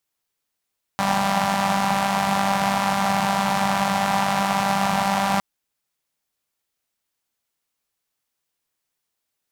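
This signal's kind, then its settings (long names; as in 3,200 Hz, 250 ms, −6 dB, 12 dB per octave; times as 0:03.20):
pulse-train model of a four-cylinder engine, steady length 4.41 s, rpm 5,900, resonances 180/790 Hz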